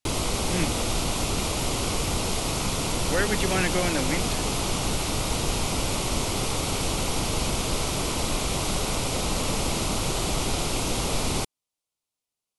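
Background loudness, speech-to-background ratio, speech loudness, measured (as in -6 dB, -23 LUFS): -26.5 LUFS, -2.5 dB, -29.0 LUFS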